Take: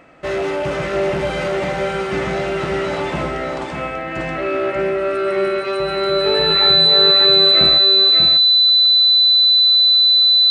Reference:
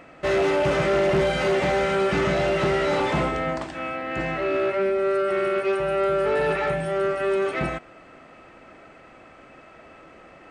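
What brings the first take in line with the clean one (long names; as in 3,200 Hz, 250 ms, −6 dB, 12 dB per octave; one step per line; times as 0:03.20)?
notch filter 4,000 Hz, Q 30
echo removal 591 ms −5 dB
level 0 dB, from 0:03.62 −3 dB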